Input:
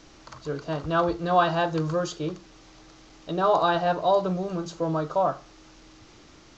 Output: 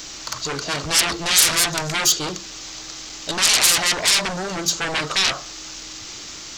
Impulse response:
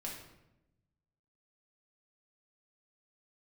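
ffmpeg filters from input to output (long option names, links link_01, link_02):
-af "aeval=exprs='0.398*sin(PI/2*10*val(0)/0.398)':channel_layout=same,crystalizer=i=9.5:c=0,volume=-18dB"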